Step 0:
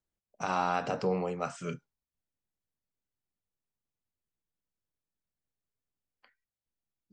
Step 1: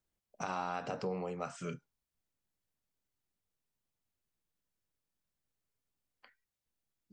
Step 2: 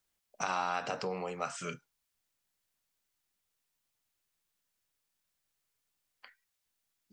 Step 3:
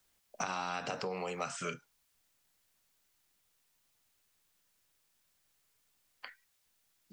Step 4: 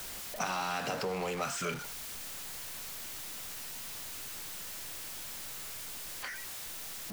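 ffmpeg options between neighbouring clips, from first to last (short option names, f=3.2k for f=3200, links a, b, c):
-af "acompressor=threshold=-44dB:ratio=2,volume=2.5dB"
-af "tiltshelf=f=650:g=-6,volume=2.5dB"
-filter_complex "[0:a]acrossover=split=330|2200[a][b][c];[a]acompressor=threshold=-54dB:ratio=4[d];[b]acompressor=threshold=-45dB:ratio=4[e];[c]acompressor=threshold=-51dB:ratio=4[f];[d][e][f]amix=inputs=3:normalize=0,volume=7.5dB"
-af "aeval=exprs='val(0)+0.5*0.015*sgn(val(0))':c=same"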